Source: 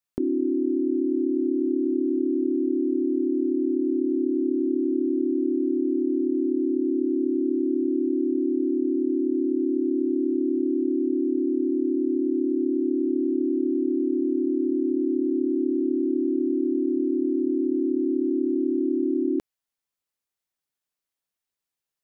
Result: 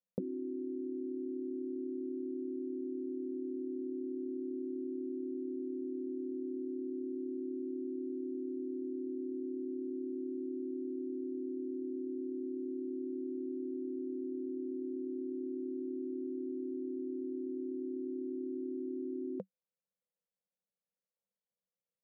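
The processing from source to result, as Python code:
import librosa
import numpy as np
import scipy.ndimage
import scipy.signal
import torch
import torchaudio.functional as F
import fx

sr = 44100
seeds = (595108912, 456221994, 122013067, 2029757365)

y = fx.double_bandpass(x, sr, hz=310.0, octaves=1.4)
y = F.gain(torch.from_numpy(y), 6.0).numpy()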